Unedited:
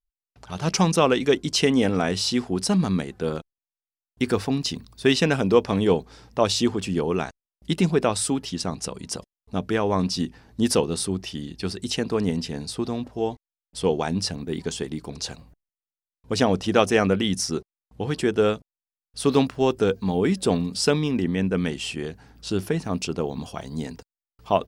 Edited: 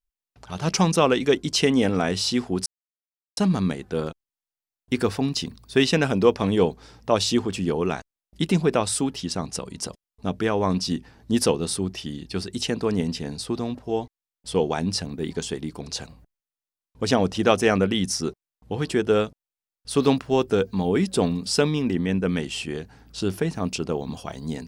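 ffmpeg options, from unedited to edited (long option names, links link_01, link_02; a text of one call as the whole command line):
ffmpeg -i in.wav -filter_complex "[0:a]asplit=2[link_01][link_02];[link_01]atrim=end=2.66,asetpts=PTS-STARTPTS,afade=type=out:start_time=2.656:duration=0.004:curve=hsin,apad=pad_dur=0.71[link_03];[link_02]atrim=start=2.66,asetpts=PTS-STARTPTS,afade=type=in:duration=0.004:curve=hsin[link_04];[link_03][link_04]concat=n=2:v=0:a=1" out.wav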